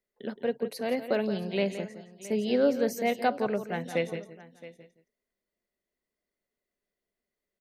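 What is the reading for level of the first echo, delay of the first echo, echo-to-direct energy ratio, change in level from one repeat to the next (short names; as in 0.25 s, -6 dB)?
-11.0 dB, 0.17 s, -10.0 dB, no steady repeat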